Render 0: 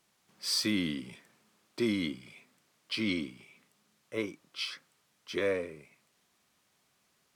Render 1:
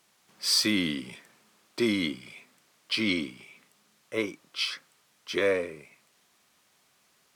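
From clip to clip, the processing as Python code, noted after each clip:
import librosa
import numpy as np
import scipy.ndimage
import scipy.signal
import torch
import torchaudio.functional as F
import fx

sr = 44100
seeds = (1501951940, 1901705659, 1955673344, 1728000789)

y = fx.low_shelf(x, sr, hz=290.0, db=-6.0)
y = F.gain(torch.from_numpy(y), 6.5).numpy()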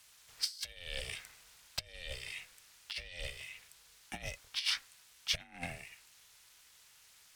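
y = fx.over_compress(x, sr, threshold_db=-34.0, ratio=-0.5)
y = y * np.sin(2.0 * np.pi * 260.0 * np.arange(len(y)) / sr)
y = fx.tone_stack(y, sr, knobs='5-5-5')
y = F.gain(torch.from_numpy(y), 8.5).numpy()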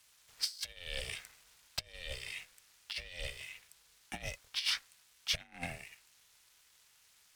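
y = fx.leveller(x, sr, passes=1)
y = F.gain(torch.from_numpy(y), -3.0).numpy()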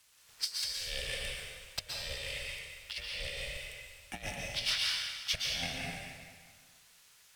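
y = fx.rev_plate(x, sr, seeds[0], rt60_s=1.7, hf_ratio=0.9, predelay_ms=105, drr_db=-3.0)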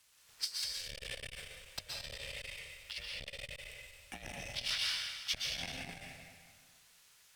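y = fx.transformer_sat(x, sr, knee_hz=880.0)
y = F.gain(torch.from_numpy(y), -2.5).numpy()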